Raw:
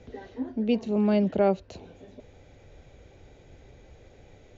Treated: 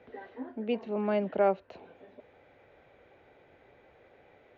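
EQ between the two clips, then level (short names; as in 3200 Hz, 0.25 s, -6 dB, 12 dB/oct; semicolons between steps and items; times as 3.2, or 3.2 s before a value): HPF 1300 Hz 6 dB/oct; LPF 1800 Hz 12 dB/oct; air absorption 74 m; +6.0 dB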